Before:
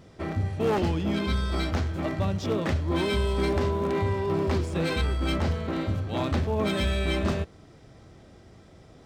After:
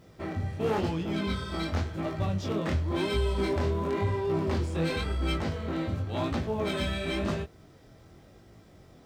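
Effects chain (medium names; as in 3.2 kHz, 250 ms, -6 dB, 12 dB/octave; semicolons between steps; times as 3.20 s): chorus 0.94 Hz, delay 17.5 ms, depth 7.1 ms; bit crusher 12-bit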